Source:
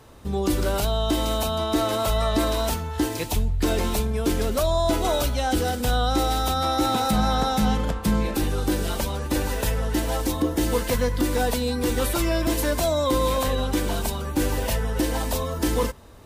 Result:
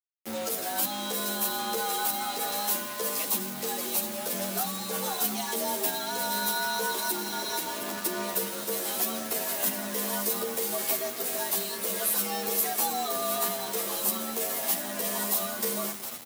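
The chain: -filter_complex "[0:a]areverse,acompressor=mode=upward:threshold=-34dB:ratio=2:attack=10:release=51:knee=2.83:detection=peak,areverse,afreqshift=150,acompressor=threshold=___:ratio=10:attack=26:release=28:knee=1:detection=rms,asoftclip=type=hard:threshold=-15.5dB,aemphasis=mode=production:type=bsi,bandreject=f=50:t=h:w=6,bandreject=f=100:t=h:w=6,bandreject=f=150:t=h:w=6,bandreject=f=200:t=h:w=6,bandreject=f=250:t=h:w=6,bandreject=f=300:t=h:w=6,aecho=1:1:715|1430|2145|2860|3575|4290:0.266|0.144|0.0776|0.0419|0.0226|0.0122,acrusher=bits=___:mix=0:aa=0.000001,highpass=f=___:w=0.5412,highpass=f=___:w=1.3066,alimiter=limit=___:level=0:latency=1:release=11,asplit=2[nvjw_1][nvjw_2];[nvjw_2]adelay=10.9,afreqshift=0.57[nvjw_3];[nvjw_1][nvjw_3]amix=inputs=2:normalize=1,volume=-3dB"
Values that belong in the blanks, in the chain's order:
-26dB, 4, 93, 93, -8dB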